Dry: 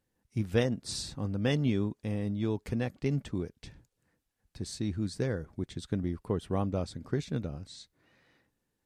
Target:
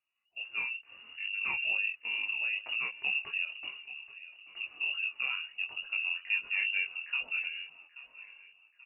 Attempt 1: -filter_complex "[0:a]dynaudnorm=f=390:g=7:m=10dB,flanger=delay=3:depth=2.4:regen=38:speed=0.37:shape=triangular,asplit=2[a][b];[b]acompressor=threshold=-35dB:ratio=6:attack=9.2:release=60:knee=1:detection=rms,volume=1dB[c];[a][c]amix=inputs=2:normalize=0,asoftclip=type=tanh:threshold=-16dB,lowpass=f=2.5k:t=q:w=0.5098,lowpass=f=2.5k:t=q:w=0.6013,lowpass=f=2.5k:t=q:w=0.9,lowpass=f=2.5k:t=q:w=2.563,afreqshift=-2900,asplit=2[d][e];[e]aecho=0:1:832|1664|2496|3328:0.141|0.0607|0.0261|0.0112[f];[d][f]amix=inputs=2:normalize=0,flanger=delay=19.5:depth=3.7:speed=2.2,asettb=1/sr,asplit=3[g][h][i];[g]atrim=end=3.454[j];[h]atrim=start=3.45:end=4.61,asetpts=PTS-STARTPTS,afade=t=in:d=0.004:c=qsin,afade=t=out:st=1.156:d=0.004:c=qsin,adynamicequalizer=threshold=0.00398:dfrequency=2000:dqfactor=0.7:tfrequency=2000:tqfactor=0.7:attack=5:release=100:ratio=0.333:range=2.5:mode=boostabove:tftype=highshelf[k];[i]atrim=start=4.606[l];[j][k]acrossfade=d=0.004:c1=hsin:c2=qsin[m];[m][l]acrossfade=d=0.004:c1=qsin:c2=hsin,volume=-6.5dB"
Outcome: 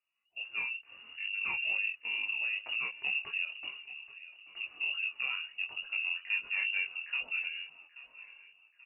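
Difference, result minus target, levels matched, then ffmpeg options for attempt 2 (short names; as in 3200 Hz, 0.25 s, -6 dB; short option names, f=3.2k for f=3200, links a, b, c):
soft clip: distortion +12 dB
-filter_complex "[0:a]dynaudnorm=f=390:g=7:m=10dB,flanger=delay=3:depth=2.4:regen=38:speed=0.37:shape=triangular,asplit=2[a][b];[b]acompressor=threshold=-35dB:ratio=6:attack=9.2:release=60:knee=1:detection=rms,volume=1dB[c];[a][c]amix=inputs=2:normalize=0,asoftclip=type=tanh:threshold=-8.5dB,lowpass=f=2.5k:t=q:w=0.5098,lowpass=f=2.5k:t=q:w=0.6013,lowpass=f=2.5k:t=q:w=0.9,lowpass=f=2.5k:t=q:w=2.563,afreqshift=-2900,asplit=2[d][e];[e]aecho=0:1:832|1664|2496|3328:0.141|0.0607|0.0261|0.0112[f];[d][f]amix=inputs=2:normalize=0,flanger=delay=19.5:depth=3.7:speed=2.2,asettb=1/sr,asplit=3[g][h][i];[g]atrim=end=3.454[j];[h]atrim=start=3.45:end=4.61,asetpts=PTS-STARTPTS,afade=t=in:d=0.004:c=qsin,afade=t=out:st=1.156:d=0.004:c=qsin,adynamicequalizer=threshold=0.00398:dfrequency=2000:dqfactor=0.7:tfrequency=2000:tqfactor=0.7:attack=5:release=100:ratio=0.333:range=2.5:mode=boostabove:tftype=highshelf[k];[i]atrim=start=4.606[l];[j][k]acrossfade=d=0.004:c1=hsin:c2=qsin[m];[m][l]acrossfade=d=0.004:c1=qsin:c2=hsin,volume=-6.5dB"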